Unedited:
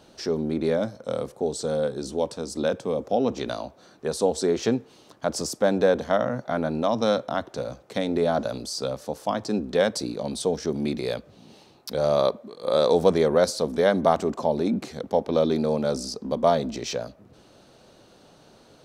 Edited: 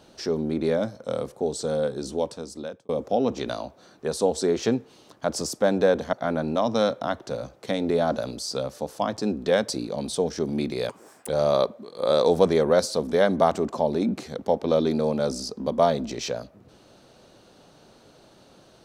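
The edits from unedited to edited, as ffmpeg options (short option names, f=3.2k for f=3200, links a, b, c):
-filter_complex "[0:a]asplit=5[a][b][c][d][e];[a]atrim=end=2.89,asetpts=PTS-STARTPTS,afade=t=out:st=2.16:d=0.73[f];[b]atrim=start=2.89:end=6.132,asetpts=PTS-STARTPTS,afade=t=in:d=0.004:c=hsin[g];[c]atrim=start=6.398:end=11.164[h];[d]atrim=start=11.16:end=11.93,asetpts=PTS-STARTPTS,asetrate=86436,aresample=44100[i];[e]atrim=start=11.926[j];[f][g]concat=n=2:v=0:a=1[k];[k][h]acrossfade=d=0.004:c1=hsin:c2=hsin[l];[l][i]acrossfade=d=0.004:c1=hsin:c2=hsin[m];[m][j]acrossfade=d=0.004:c1=hsin:c2=hsin"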